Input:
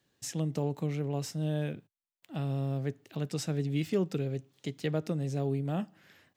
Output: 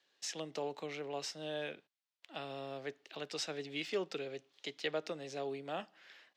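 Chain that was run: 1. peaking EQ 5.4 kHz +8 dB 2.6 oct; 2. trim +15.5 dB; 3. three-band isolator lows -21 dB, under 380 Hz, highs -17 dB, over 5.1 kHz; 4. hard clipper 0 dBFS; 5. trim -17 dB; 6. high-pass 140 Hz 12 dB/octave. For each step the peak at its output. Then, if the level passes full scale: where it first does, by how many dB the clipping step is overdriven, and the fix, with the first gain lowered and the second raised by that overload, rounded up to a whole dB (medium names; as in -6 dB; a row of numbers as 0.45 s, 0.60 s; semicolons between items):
-16.0 dBFS, -0.5 dBFS, -5.5 dBFS, -5.5 dBFS, -22.5 dBFS, -22.0 dBFS; nothing clips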